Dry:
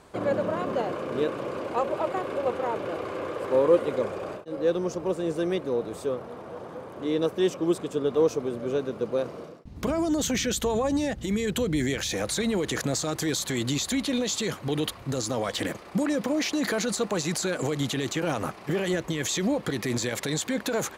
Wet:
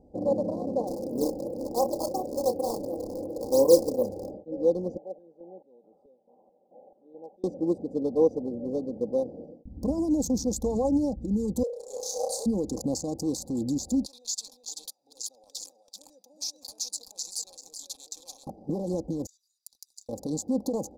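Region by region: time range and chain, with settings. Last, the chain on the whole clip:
0:00.87–0:04.31: sample-and-hold swept by an LFO 13×, swing 160% 2.8 Hz + flutter between parallel walls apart 5.1 metres, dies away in 0.22 s
0:04.97–0:07.44: comb filter 5.1 ms, depth 37% + band-pass on a step sequencer 4.6 Hz 700–2,900 Hz
0:11.63–0:12.46: Butterworth high-pass 450 Hz 96 dB per octave + flutter between parallel walls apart 5.4 metres, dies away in 0.65 s
0:14.06–0:18.47: high-pass with resonance 2,600 Hz, resonance Q 3.3 + single-tap delay 384 ms −3.5 dB
0:19.26–0:20.09: Butterworth high-pass 2,500 Hz 96 dB per octave + spectral tilt +2.5 dB per octave + downward compressor 4 to 1, threshold −33 dBFS
whole clip: adaptive Wiener filter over 41 samples; elliptic band-stop filter 870–4,800 Hz, stop band 40 dB; comb filter 3.8 ms, depth 55%

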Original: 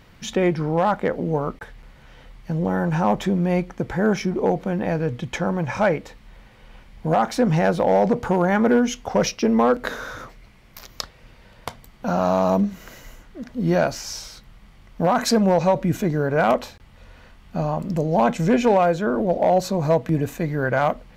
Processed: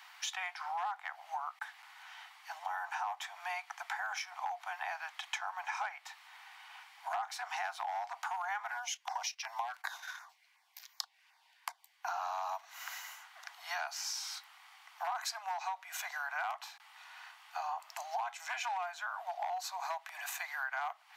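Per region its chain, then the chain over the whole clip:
0:08.71–0:12.08: notch filter 1,300 Hz, Q 5.7 + auto-filter notch saw down 2.7 Hz 530–3,700 Hz + noise gate −37 dBFS, range −11 dB
whole clip: Butterworth high-pass 730 Hz 96 dB per octave; downward compressor 6 to 1, threshold −37 dBFS; level +1 dB

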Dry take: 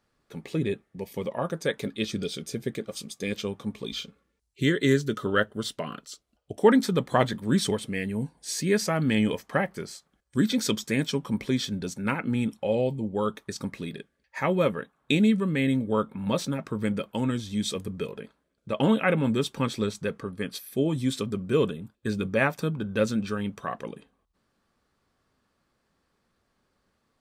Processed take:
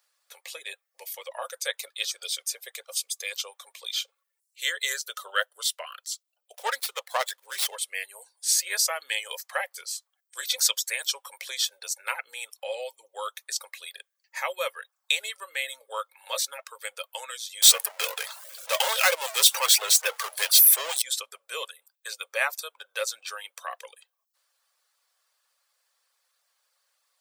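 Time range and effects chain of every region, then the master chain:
0:06.54–0:07.76: high-pass filter 290 Hz 6 dB per octave + windowed peak hold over 5 samples
0:17.62–0:21.02: high-pass filter 220 Hz 6 dB per octave + power curve on the samples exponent 0.5
whole clip: reverb reduction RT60 0.51 s; Chebyshev high-pass filter 510 Hz, order 5; spectral tilt +4.5 dB per octave; level −2 dB

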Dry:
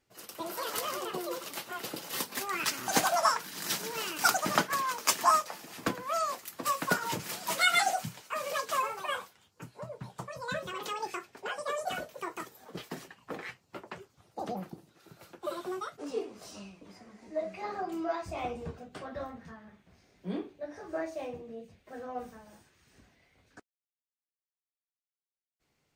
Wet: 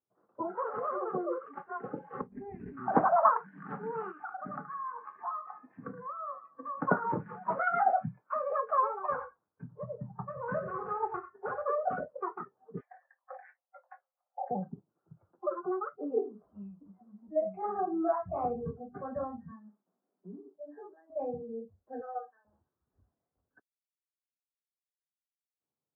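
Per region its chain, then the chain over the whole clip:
0:02.21–0:02.77: lower of the sound and its delayed copy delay 0.43 ms + parametric band 1,900 Hz −11 dB 2.5 octaves + log-companded quantiser 4 bits
0:04.11–0:06.81: downward compressor 3 to 1, threshold −41 dBFS + delay with a low-pass on its return 74 ms, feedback 64%, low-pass 3,000 Hz, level −10 dB
0:09.10–0:11.66: variable-slope delta modulation 16 kbit/s + repeating echo 92 ms, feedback 16%, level −10 dB
0:12.80–0:14.51: Chebyshev high-pass with heavy ripple 510 Hz, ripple 6 dB + double-tracking delay 23 ms −12 dB
0:19.51–0:21.10: Butterworth high-pass 190 Hz + downward compressor 16 to 1, threshold −43 dBFS
0:22.01–0:22.45: high-pass filter 530 Hz + spectral tilt +3 dB per octave
whole clip: high-pass filter 110 Hz 12 dB per octave; noise reduction from a noise print of the clip's start 21 dB; Butterworth low-pass 1,300 Hz 36 dB per octave; level +4 dB

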